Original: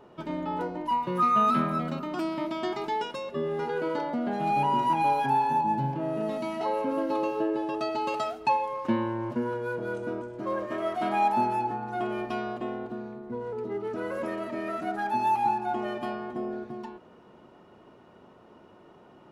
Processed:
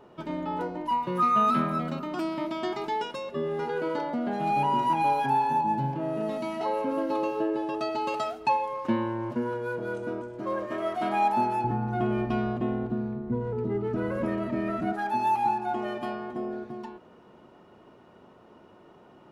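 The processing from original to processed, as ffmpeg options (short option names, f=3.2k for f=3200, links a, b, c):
-filter_complex "[0:a]asettb=1/sr,asplit=3[a][b][c];[a]atrim=end=11.644[d];[b]atrim=start=11.64:end=14.93,asetpts=PTS-STARTPTS,afade=t=in:d=0.004:c=qsin,afade=t=out:st=3.286:d=0.004:c=qsin,bass=f=250:g=15,treble=f=4k:g=-6[e];[c]atrim=start=14.926[f];[d][e]acrossfade=d=0.004:c1=hsin:c2=qsin[g];[g][f]acrossfade=d=0.004:c1=qsin:c2=hsin"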